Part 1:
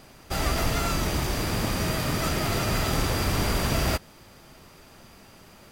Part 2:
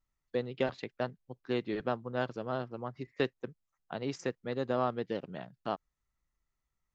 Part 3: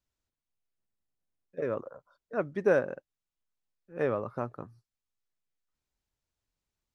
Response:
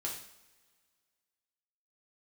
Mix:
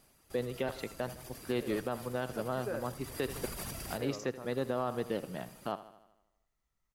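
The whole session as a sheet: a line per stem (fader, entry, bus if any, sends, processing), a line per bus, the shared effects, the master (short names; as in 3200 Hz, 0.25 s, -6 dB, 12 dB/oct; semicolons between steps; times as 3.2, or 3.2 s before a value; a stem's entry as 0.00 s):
2.77 s -21 dB -> 3.4 s -10 dB, 0.00 s, no send, echo send -12.5 dB, reverb removal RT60 1.1 s; bell 11000 Hz +13.5 dB 0.9 oct; negative-ratio compressor -31 dBFS, ratio -1
+1.0 dB, 0.00 s, send -24 dB, echo send -18 dB, dry
-14.0 dB, 0.00 s, no send, no echo send, dry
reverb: on, pre-delay 3 ms
echo: feedback echo 79 ms, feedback 57%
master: limiter -22 dBFS, peak gain reduction 8 dB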